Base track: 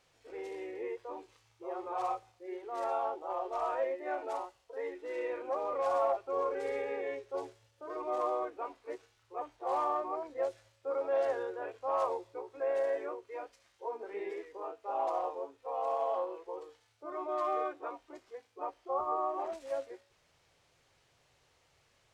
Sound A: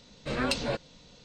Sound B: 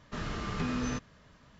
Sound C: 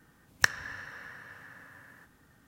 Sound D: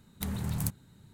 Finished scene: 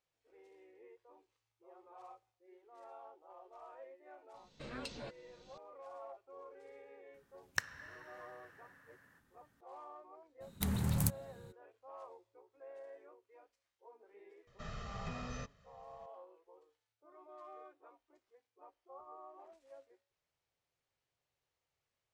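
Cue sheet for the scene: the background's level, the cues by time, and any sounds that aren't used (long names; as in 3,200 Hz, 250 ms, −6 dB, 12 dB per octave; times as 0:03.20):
base track −20 dB
0:04.34: mix in A −16.5 dB + camcorder AGC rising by 20 dB per second
0:07.14: mix in C −11.5 dB
0:10.40: mix in D −0.5 dB, fades 0.02 s
0:14.47: mix in B −12 dB + comb filter 1.6 ms, depth 79%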